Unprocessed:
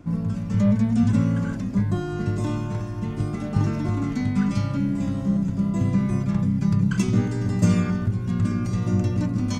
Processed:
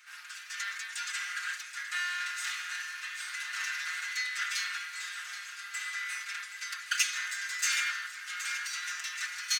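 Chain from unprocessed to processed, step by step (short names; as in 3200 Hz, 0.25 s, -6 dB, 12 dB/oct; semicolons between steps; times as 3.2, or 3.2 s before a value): minimum comb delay 0.47 ms; elliptic high-pass 1500 Hz, stop band 80 dB; comb 5.6 ms, depth 87%; feedback echo 0.775 s, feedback 50%, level -12 dB; gain +6 dB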